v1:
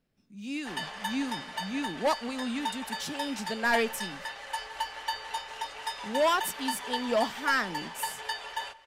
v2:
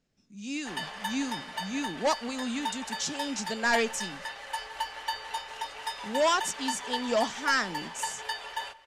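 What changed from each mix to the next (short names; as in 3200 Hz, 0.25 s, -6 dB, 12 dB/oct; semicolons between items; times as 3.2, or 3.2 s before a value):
speech: add synth low-pass 6800 Hz, resonance Q 3.2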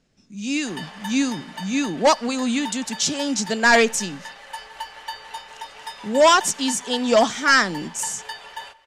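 speech +10.5 dB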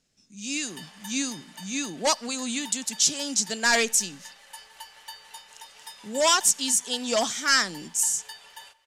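speech +4.0 dB; master: add pre-emphasis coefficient 0.8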